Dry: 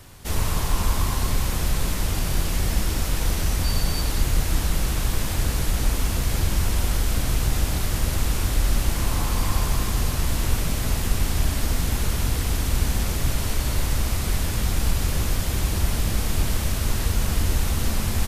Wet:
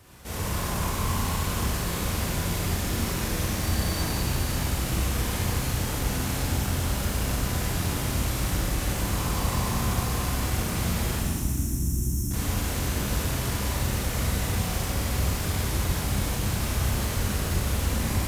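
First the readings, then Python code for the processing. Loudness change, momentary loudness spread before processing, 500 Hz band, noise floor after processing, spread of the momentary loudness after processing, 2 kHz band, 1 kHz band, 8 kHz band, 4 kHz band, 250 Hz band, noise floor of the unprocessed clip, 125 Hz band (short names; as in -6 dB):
-2.5 dB, 1 LU, 0.0 dB, -30 dBFS, 1 LU, -1.0 dB, 0.0 dB, -2.0 dB, -2.5 dB, +0.5 dB, -26 dBFS, -2.0 dB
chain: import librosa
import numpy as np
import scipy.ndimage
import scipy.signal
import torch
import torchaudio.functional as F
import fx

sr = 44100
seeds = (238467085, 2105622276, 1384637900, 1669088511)

p1 = fx.sample_hold(x, sr, seeds[0], rate_hz=6200.0, jitter_pct=0)
p2 = x + F.gain(torch.from_numpy(p1), -11.0).numpy()
p3 = p2 + 10.0 ** (-8.0 / 20.0) * np.pad(p2, (int(543 * sr / 1000.0), 0))[:len(p2)]
p4 = np.clip(p3, -10.0 ** (-15.5 / 20.0), 10.0 ** (-15.5 / 20.0))
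p5 = scipy.signal.sosfilt(scipy.signal.butter(2, 56.0, 'highpass', fs=sr, output='sos'), p4)
p6 = fx.spec_box(p5, sr, start_s=11.19, length_s=1.12, low_hz=370.0, high_hz=5300.0, gain_db=-26)
p7 = fx.rev_schroeder(p6, sr, rt60_s=1.8, comb_ms=31, drr_db=-6.0)
y = F.gain(torch.from_numpy(p7), -8.5).numpy()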